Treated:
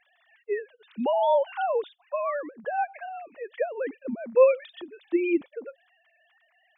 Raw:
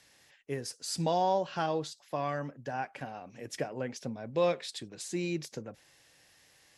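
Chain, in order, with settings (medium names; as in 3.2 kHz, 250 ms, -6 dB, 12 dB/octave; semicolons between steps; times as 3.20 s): formants replaced by sine waves; trim +7 dB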